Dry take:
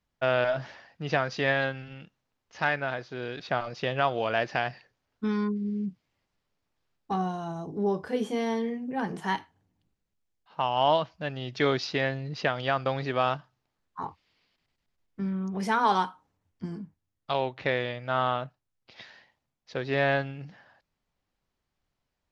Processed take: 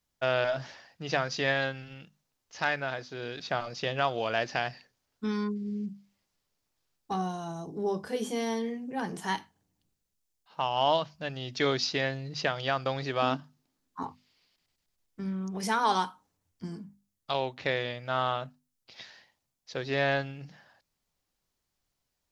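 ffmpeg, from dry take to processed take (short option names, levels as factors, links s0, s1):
-filter_complex "[0:a]asettb=1/sr,asplit=3[s0][s1][s2];[s0]atrim=end=13.224[s3];[s1]atrim=start=13.22:end=14.03,asetpts=PTS-STARTPTS,afade=t=in:d=0.004:c=qsin,afade=t=out:st=0.806:d=0.004:c=qsin,equalizer=f=260:w=2:g=14[s4];[s2]atrim=start=14.026[s5];[s3][s4]acrossfade=d=0.004:c1=hsin:c2=qsin[s6];[s6][s5]acrossfade=d=0.004:c1=qsin:c2=hsin,bass=f=250:g=0,treble=f=4000:g=11,bandreject=f=50:t=h:w=6,bandreject=f=100:t=h:w=6,bandreject=f=150:t=h:w=6,bandreject=f=200:t=h:w=6,bandreject=f=250:t=h:w=6,volume=0.75"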